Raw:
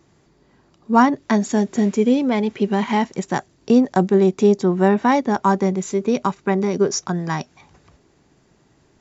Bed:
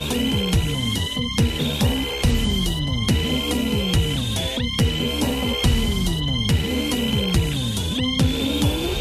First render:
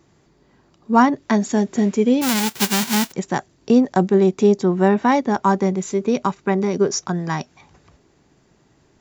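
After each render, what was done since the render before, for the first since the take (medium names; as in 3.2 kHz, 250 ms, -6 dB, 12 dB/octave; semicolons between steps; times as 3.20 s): 2.21–3.11 s: formants flattened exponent 0.1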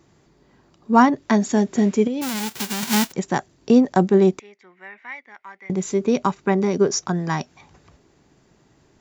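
2.07–2.83 s: compression, threshold -22 dBFS; 4.39–5.70 s: band-pass filter 2.1 kHz, Q 8.4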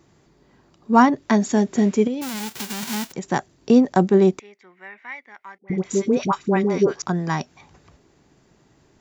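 2.14–3.32 s: compression 2.5:1, threshold -26 dBFS; 5.58–7.02 s: phase dispersion highs, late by 85 ms, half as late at 900 Hz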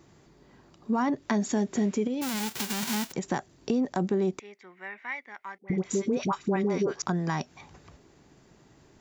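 peak limiter -12.5 dBFS, peak gain reduction 9.5 dB; compression 2:1, threshold -28 dBFS, peak gain reduction 7 dB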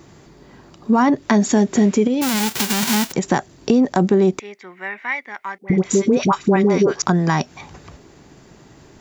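trim +11.5 dB; peak limiter -3 dBFS, peak gain reduction 1 dB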